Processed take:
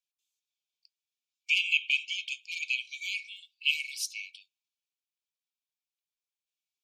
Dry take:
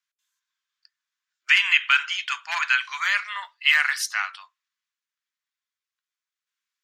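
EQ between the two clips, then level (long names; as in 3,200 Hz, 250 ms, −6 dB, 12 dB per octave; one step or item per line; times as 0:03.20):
linear-phase brick-wall high-pass 2,200 Hz
−6.0 dB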